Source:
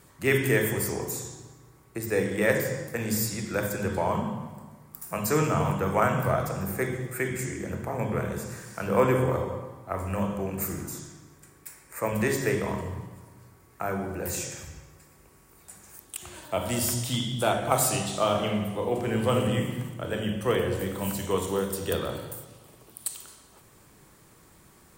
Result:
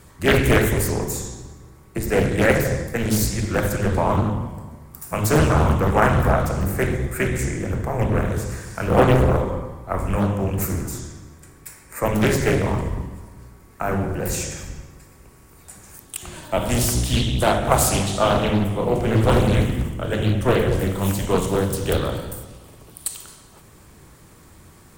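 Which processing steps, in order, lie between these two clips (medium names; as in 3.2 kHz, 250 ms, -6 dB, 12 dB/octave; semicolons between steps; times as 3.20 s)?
octave divider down 1 oct, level +2 dB; loudspeaker Doppler distortion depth 0.66 ms; trim +6 dB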